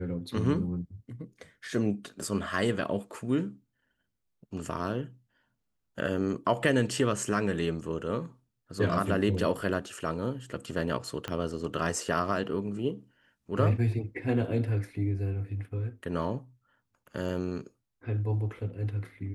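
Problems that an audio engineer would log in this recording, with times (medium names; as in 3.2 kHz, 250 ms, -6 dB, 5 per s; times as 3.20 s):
11.28 s: pop -19 dBFS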